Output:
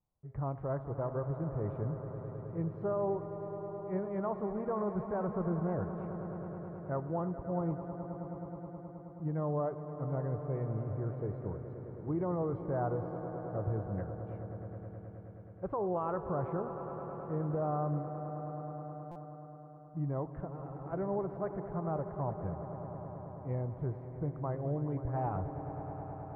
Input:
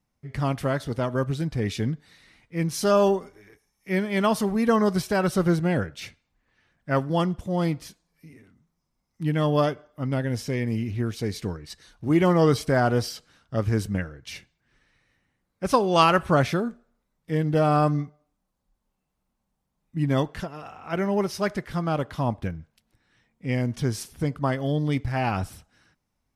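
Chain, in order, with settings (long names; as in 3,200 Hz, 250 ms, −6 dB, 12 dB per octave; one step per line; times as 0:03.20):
low-pass filter 1,100 Hz 24 dB per octave
parametric band 240 Hz −12 dB 0.46 octaves
brickwall limiter −19 dBFS, peak gain reduction 10.5 dB
on a send: echo that builds up and dies away 106 ms, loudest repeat 5, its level −14 dB
on the sum: buffer that repeats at 0:19.11, samples 256, times 7
level −7.5 dB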